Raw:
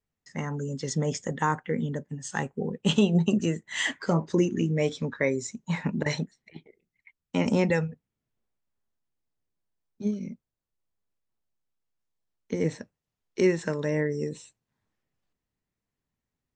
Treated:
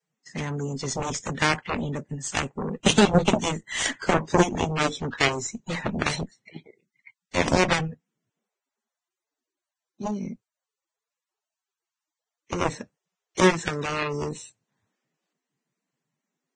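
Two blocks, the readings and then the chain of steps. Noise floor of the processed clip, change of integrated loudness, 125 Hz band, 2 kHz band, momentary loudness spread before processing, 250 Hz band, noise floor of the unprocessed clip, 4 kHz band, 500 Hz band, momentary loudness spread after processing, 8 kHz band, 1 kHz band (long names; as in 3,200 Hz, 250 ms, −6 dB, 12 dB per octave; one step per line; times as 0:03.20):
below −85 dBFS, +3.0 dB, 0.0 dB, +6.5 dB, 12 LU, 0.0 dB, below −85 dBFS, +7.5 dB, +2.0 dB, 13 LU, +7.5 dB, +8.0 dB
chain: harmonic generator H 2 −18 dB, 7 −10 dB, 8 −23 dB, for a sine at −10 dBFS
level +2.5 dB
Ogg Vorbis 16 kbit/s 22,050 Hz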